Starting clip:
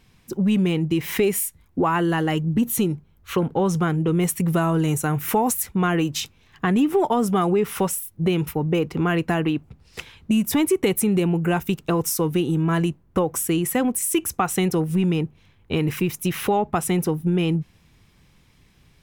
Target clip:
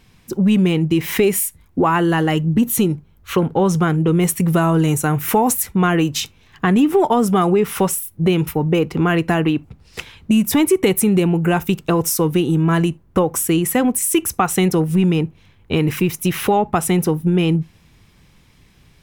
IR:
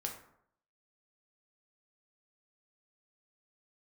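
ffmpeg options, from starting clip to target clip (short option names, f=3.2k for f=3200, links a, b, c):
-filter_complex "[0:a]asplit=2[a][b];[1:a]atrim=start_sample=2205,afade=t=out:st=0.14:d=0.01,atrim=end_sample=6615,asetrate=48510,aresample=44100[c];[b][c]afir=irnorm=-1:irlink=0,volume=-17dB[d];[a][d]amix=inputs=2:normalize=0,volume=4dB"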